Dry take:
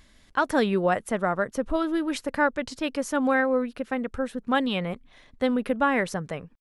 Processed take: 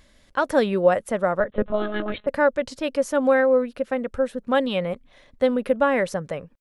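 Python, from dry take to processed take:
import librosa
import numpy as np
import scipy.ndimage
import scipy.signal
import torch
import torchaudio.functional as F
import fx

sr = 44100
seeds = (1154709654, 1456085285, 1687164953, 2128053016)

y = fx.peak_eq(x, sr, hz=550.0, db=9.0, octaves=0.34)
y = fx.lpc_monotone(y, sr, seeds[0], pitch_hz=210.0, order=16, at=(1.4, 2.27))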